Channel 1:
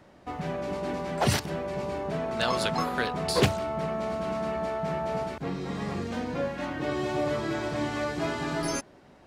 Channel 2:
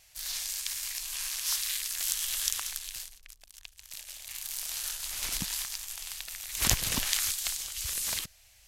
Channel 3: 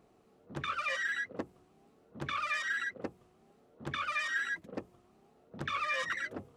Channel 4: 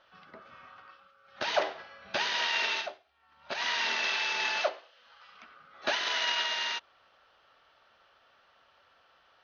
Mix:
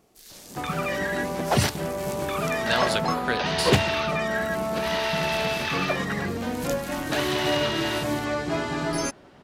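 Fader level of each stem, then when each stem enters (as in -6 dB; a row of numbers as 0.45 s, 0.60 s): +3.0 dB, -11.5 dB, +2.5 dB, +0.5 dB; 0.30 s, 0.00 s, 0.00 s, 1.25 s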